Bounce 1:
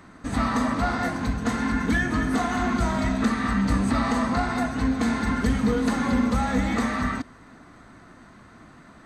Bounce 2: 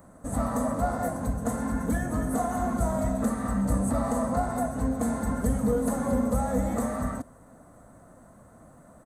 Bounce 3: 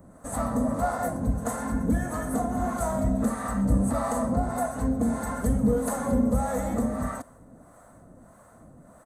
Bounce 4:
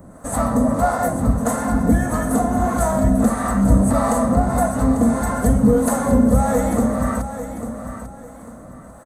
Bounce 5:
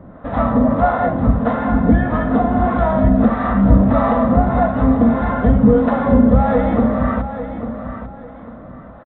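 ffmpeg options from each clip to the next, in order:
-af "firequalizer=gain_entry='entry(150,0);entry(380,-6);entry(540,8);entry(840,-2);entry(2400,-18);entry(5000,-14);entry(7300,3);entry(10000,12)':delay=0.05:min_phase=1,volume=-2dB"
-filter_complex "[0:a]acrossover=split=530[a][b];[a]aeval=exprs='val(0)*(1-0.7/2+0.7/2*cos(2*PI*1.6*n/s))':c=same[c];[b]aeval=exprs='val(0)*(1-0.7/2-0.7/2*cos(2*PI*1.6*n/s))':c=same[d];[c][d]amix=inputs=2:normalize=0,volume=4dB"
-af "aecho=1:1:845|1690|2535:0.299|0.0896|0.0269,volume=8.5dB"
-af "aresample=8000,aresample=44100,volume=3dB"

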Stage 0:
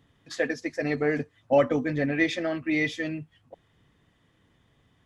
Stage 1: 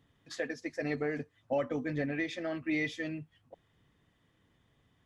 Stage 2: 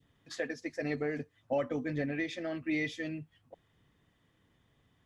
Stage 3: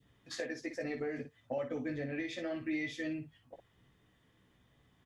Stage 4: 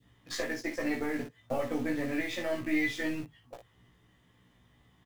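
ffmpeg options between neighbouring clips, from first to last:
-af "alimiter=limit=-17dB:level=0:latency=1:release=389,volume=-5.5dB"
-af "adynamicequalizer=threshold=0.00316:dfrequency=1100:dqfactor=1.1:tfrequency=1100:tqfactor=1.1:attack=5:release=100:ratio=0.375:range=2:mode=cutabove:tftype=bell"
-af "acompressor=threshold=-36dB:ratio=6,aecho=1:1:16|58:0.531|0.376"
-filter_complex "[0:a]asplit=2[a][b];[b]acrusher=bits=5:dc=4:mix=0:aa=0.000001,volume=-4dB[c];[a][c]amix=inputs=2:normalize=0,asplit=2[d][e];[e]adelay=17,volume=-2dB[f];[d][f]amix=inputs=2:normalize=0,volume=2dB"

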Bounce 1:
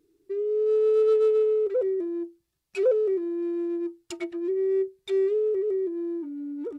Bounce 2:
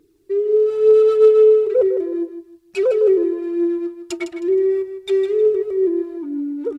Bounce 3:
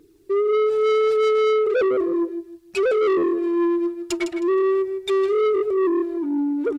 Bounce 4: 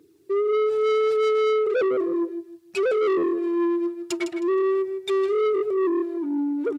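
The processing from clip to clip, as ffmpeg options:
-filter_complex "[0:a]aphaser=in_gain=1:out_gain=1:delay=3.1:decay=0.41:speed=1.1:type=triangular,asplit=2[a][b];[b]aecho=0:1:157|314|471:0.316|0.0885|0.0248[c];[a][c]amix=inputs=2:normalize=0,volume=7dB"
-af "asoftclip=type=tanh:threshold=-21dB,volume=4dB"
-af "highpass=f=95:w=0.5412,highpass=f=95:w=1.3066,volume=-2.5dB"

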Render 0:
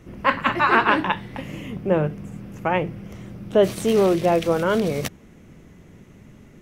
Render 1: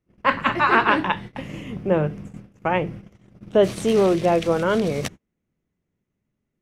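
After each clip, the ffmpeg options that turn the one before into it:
-af "agate=range=-31dB:threshold=-34dB:ratio=16:detection=peak,lowpass=10k"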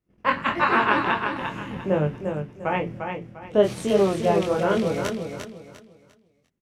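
-af "flanger=delay=20:depth=4.4:speed=1.5,aecho=1:1:349|698|1047|1396:0.501|0.15|0.0451|0.0135"

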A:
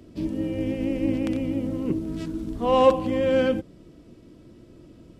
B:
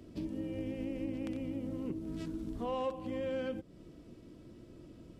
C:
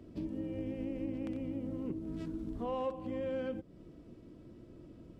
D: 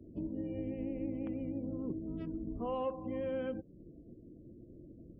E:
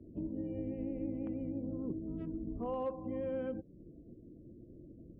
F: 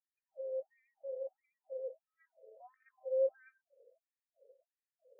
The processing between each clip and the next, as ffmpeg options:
-af "acompressor=threshold=-33dB:ratio=3,volume=-4.5dB"
-af "highshelf=f=2.5k:g=-8.5"
-af "afftdn=nr=36:nf=-55"
-af "asoftclip=type=hard:threshold=-27.5dB,lowpass=f=1.2k:p=1"
-filter_complex "[0:a]asplit=3[a][b][c];[a]bandpass=f=530:t=q:w=8,volume=0dB[d];[b]bandpass=f=1.84k:t=q:w=8,volume=-6dB[e];[c]bandpass=f=2.48k:t=q:w=8,volume=-9dB[f];[d][e][f]amix=inputs=3:normalize=0,afftfilt=real='re*between(b*sr/1024,560*pow(1800/560,0.5+0.5*sin(2*PI*1.5*pts/sr))/1.41,560*pow(1800/560,0.5+0.5*sin(2*PI*1.5*pts/sr))*1.41)':imag='im*between(b*sr/1024,560*pow(1800/560,0.5+0.5*sin(2*PI*1.5*pts/sr))/1.41,560*pow(1800/560,0.5+0.5*sin(2*PI*1.5*pts/sr))*1.41)':win_size=1024:overlap=0.75,volume=11dB"

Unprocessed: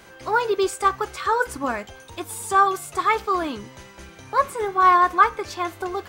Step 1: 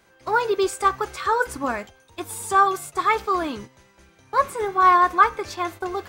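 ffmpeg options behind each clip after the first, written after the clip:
-af "bandreject=f=3k:w=29,agate=range=-11dB:threshold=-36dB:ratio=16:detection=peak"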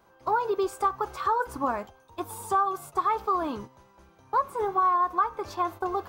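-af "equalizer=f=1k:t=o:w=1:g=8,equalizer=f=2k:t=o:w=1:g=-9,equalizer=f=4k:t=o:w=1:g=-3,equalizer=f=8k:t=o:w=1:g=-8,acompressor=threshold=-20dB:ratio=4,volume=-2.5dB"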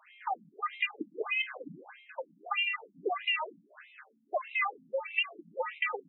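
-af "acompressor=threshold=-29dB:ratio=6,aeval=exprs='val(0)*sin(2*PI*1600*n/s)':c=same,afftfilt=real='re*between(b*sr/1024,200*pow(2900/200,0.5+0.5*sin(2*PI*1.6*pts/sr))/1.41,200*pow(2900/200,0.5+0.5*sin(2*PI*1.6*pts/sr))*1.41)':imag='im*between(b*sr/1024,200*pow(2900/200,0.5+0.5*sin(2*PI*1.6*pts/sr))/1.41,200*pow(2900/200,0.5+0.5*sin(2*PI*1.6*pts/sr))*1.41)':win_size=1024:overlap=0.75,volume=8.5dB"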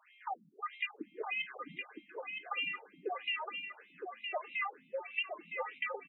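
-af "aecho=1:1:964|1928|2892:0.501|0.105|0.0221,volume=-6dB"

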